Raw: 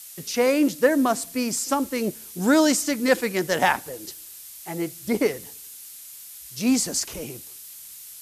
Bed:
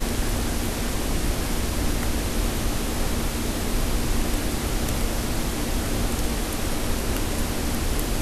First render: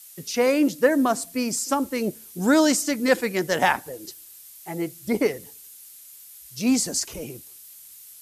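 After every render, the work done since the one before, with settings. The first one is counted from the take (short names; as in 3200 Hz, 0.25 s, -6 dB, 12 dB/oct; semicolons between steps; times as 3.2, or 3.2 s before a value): denoiser 6 dB, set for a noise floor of -42 dBFS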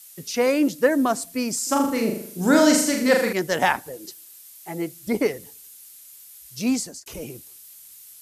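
1.59–3.33 flutter echo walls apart 6.8 m, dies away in 0.61 s; 3.96–5.07 HPF 130 Hz 24 dB/oct; 6.63–7.06 fade out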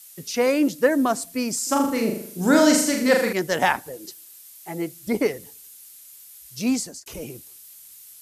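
nothing audible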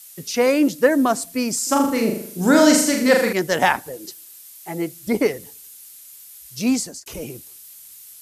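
gain +3 dB; limiter -3 dBFS, peak gain reduction 1.5 dB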